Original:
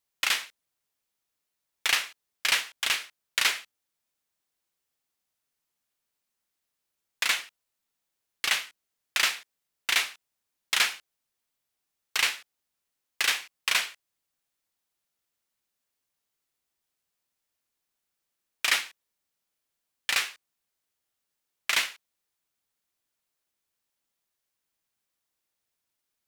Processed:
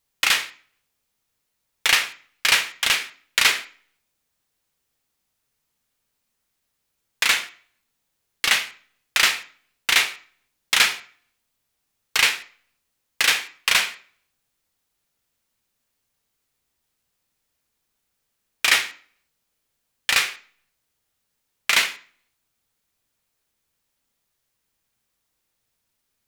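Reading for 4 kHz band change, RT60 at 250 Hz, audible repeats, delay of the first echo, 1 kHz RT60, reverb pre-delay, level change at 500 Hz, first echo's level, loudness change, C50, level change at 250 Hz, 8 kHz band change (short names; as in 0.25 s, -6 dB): +7.0 dB, 0.50 s, none, none, 0.50 s, 3 ms, +8.0 dB, none, +7.0 dB, 15.0 dB, +9.5 dB, +6.5 dB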